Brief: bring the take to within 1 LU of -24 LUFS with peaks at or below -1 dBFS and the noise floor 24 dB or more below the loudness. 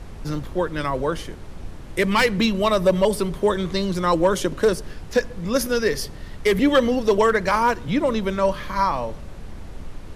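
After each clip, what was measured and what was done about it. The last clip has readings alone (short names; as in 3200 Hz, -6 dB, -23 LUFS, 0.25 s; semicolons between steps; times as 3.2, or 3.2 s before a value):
clipped 0.5%; flat tops at -9.5 dBFS; noise floor -37 dBFS; noise floor target -46 dBFS; loudness -21.5 LUFS; peak -9.5 dBFS; loudness target -24.0 LUFS
-> clip repair -9.5 dBFS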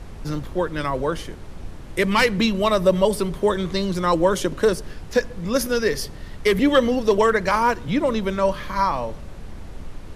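clipped 0.0%; noise floor -37 dBFS; noise floor target -46 dBFS
-> noise print and reduce 9 dB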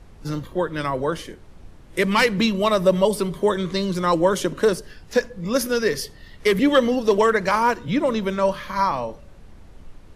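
noise floor -46 dBFS; loudness -21.5 LUFS; peak -2.5 dBFS; loudness target -24.0 LUFS
-> gain -2.5 dB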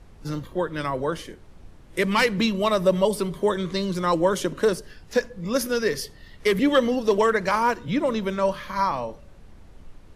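loudness -24.0 LUFS; peak -5.0 dBFS; noise floor -48 dBFS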